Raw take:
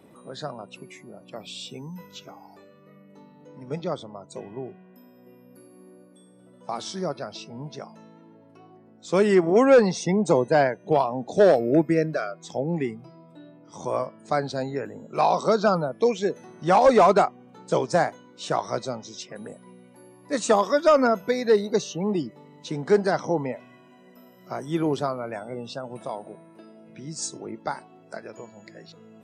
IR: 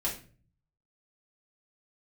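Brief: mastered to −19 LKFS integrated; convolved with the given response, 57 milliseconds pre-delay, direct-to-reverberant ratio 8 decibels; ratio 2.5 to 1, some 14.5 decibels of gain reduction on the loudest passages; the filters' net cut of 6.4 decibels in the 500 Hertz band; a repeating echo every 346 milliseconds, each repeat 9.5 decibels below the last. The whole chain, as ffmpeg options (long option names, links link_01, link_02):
-filter_complex "[0:a]equalizer=frequency=500:width_type=o:gain=-8,acompressor=threshold=-40dB:ratio=2.5,aecho=1:1:346|692|1038|1384:0.335|0.111|0.0365|0.012,asplit=2[link_01][link_02];[1:a]atrim=start_sample=2205,adelay=57[link_03];[link_02][link_03]afir=irnorm=-1:irlink=0,volume=-13dB[link_04];[link_01][link_04]amix=inputs=2:normalize=0,volume=20.5dB"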